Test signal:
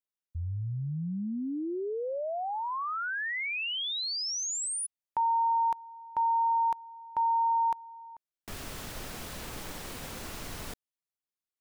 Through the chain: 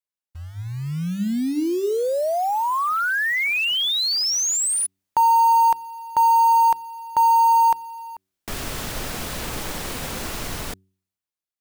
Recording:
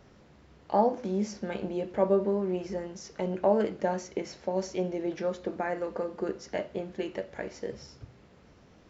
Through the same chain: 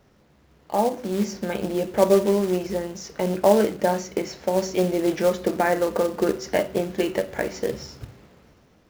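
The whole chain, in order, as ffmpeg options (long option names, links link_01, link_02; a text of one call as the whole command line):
ffmpeg -i in.wav -af "acrusher=bits=4:mode=log:mix=0:aa=0.000001,bandreject=frequency=94.81:width_type=h:width=4,bandreject=frequency=189.62:width_type=h:width=4,bandreject=frequency=284.43:width_type=h:width=4,bandreject=frequency=379.24:width_type=h:width=4,dynaudnorm=framelen=270:gausssize=7:maxgain=13dB,volume=-2dB" out.wav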